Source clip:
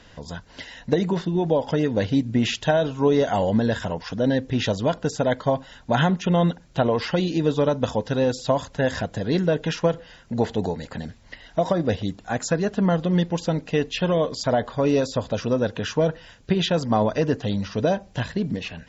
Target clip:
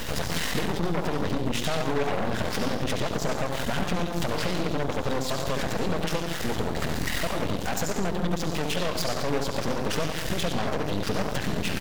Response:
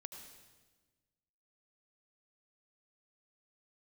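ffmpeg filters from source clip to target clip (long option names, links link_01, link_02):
-filter_complex "[0:a]aeval=exprs='val(0)+0.5*0.0224*sgn(val(0))':channel_layout=same,acompressor=threshold=-32dB:ratio=10[link_01];[1:a]atrim=start_sample=2205,afade=type=out:start_time=0.38:duration=0.01,atrim=end_sample=17199,asetrate=32634,aresample=44100[link_02];[link_01][link_02]afir=irnorm=-1:irlink=0,aeval=exprs='0.0596*(cos(1*acos(clip(val(0)/0.0596,-1,1)))-cos(1*PI/2))+0.00075*(cos(4*acos(clip(val(0)/0.0596,-1,1)))-cos(4*PI/2))+0.00335*(cos(6*acos(clip(val(0)/0.0596,-1,1)))-cos(6*PI/2))+0.000668*(cos(7*acos(clip(val(0)/0.0596,-1,1)))-cos(7*PI/2))+0.0188*(cos(8*acos(clip(val(0)/0.0596,-1,1)))-cos(8*PI/2))':channel_layout=same,atempo=1.6,volume=8dB"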